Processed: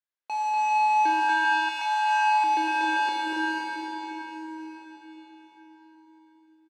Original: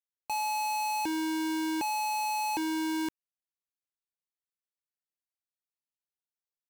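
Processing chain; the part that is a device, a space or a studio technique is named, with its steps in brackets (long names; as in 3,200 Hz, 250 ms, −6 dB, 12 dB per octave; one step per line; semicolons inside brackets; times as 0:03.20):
station announcement (band-pass filter 340–4,100 Hz; parametric band 1,600 Hz +9 dB 0.22 octaves; loudspeakers that aren't time-aligned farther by 83 metres −11 dB, 95 metres −7 dB; convolution reverb RT60 5.0 s, pre-delay 22 ms, DRR −3.5 dB)
0:01.29–0:02.44: Butterworth high-pass 760 Hz 48 dB per octave
bouncing-ball delay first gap 240 ms, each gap 0.65×, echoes 5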